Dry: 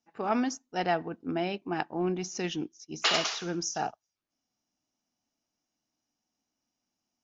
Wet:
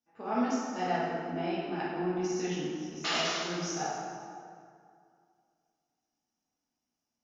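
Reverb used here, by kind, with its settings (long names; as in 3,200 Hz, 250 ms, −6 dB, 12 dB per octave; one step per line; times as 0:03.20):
dense smooth reverb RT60 2.3 s, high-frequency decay 0.6×, DRR −8.5 dB
level −11 dB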